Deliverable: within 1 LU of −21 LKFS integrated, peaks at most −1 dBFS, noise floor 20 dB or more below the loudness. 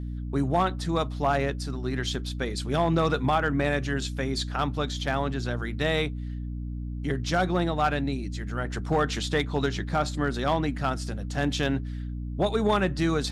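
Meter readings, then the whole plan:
share of clipped samples 0.4%; peaks flattened at −15.0 dBFS; mains hum 60 Hz; hum harmonics up to 300 Hz; level of the hum −31 dBFS; integrated loudness −27.5 LKFS; sample peak −15.0 dBFS; target loudness −21.0 LKFS
→ clipped peaks rebuilt −15 dBFS
hum removal 60 Hz, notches 5
level +6.5 dB

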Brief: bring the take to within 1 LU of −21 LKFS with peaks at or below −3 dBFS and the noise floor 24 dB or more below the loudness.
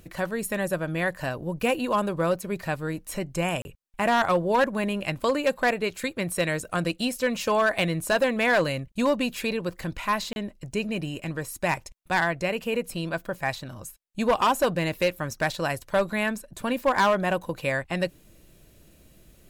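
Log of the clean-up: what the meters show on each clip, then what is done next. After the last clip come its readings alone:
share of clipped samples 0.8%; peaks flattened at −15.5 dBFS; number of dropouts 2; longest dropout 31 ms; integrated loudness −26.5 LKFS; sample peak −15.5 dBFS; target loudness −21.0 LKFS
→ clipped peaks rebuilt −15.5 dBFS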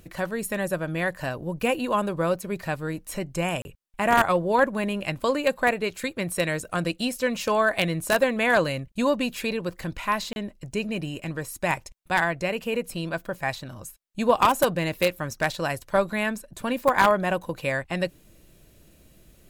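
share of clipped samples 0.0%; number of dropouts 2; longest dropout 31 ms
→ repair the gap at 0:03.62/0:10.33, 31 ms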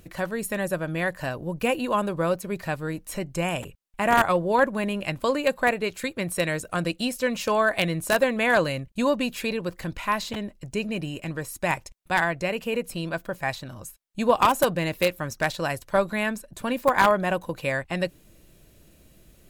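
number of dropouts 0; integrated loudness −25.5 LKFS; sample peak −6.5 dBFS; target loudness −21.0 LKFS
→ level +4.5 dB
brickwall limiter −3 dBFS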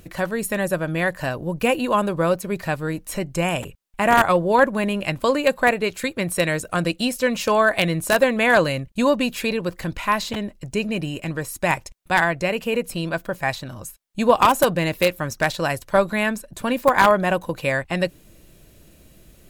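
integrated loudness −21.5 LKFS; sample peak −3.0 dBFS; background noise floor −52 dBFS

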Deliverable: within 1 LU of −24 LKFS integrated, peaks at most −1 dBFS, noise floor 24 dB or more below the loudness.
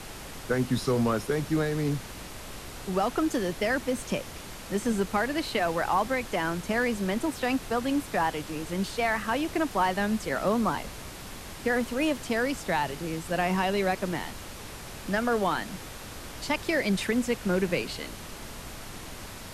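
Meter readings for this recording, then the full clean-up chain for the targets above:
background noise floor −42 dBFS; target noise floor −53 dBFS; integrated loudness −28.5 LKFS; sample peak −13.5 dBFS; target loudness −24.0 LKFS
→ noise reduction from a noise print 11 dB
level +4.5 dB

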